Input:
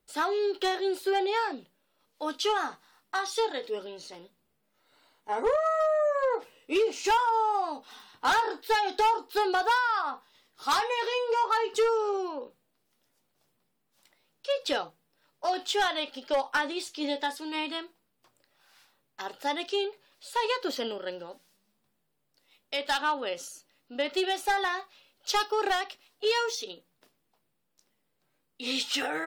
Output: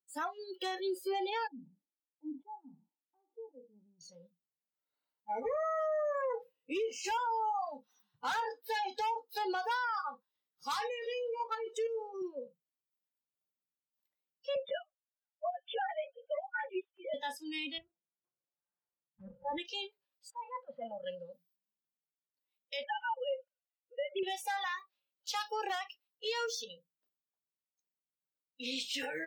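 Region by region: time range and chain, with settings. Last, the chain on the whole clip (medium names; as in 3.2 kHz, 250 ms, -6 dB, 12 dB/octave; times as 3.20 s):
1.47–4.01 s: cascade formant filter u + decay stretcher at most 110 dB/s
10.86–12.22 s: level held to a coarse grid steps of 12 dB + resonant high-pass 300 Hz, resonance Q 3.1 + delay 156 ms -20 dB
14.55–17.14 s: formants replaced by sine waves + low-pass 2 kHz 6 dB/octave + doubling 13 ms -2.5 dB
17.78–19.58 s: comb filter that takes the minimum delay 5.7 ms + low-pass 1 kHz + transient shaper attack -2 dB, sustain +5 dB
20.30–21.04 s: low-pass 2.6 kHz + compressor with a negative ratio -32 dBFS + FFT filter 150 Hz 0 dB, 390 Hz -24 dB, 680 Hz +7 dB, 12 kHz -27 dB
22.83–24.23 s: formants replaced by sine waves + bass shelf 360 Hz +8.5 dB
whole clip: high-pass 74 Hz; spectral noise reduction 26 dB; peak limiter -25 dBFS; trim -3.5 dB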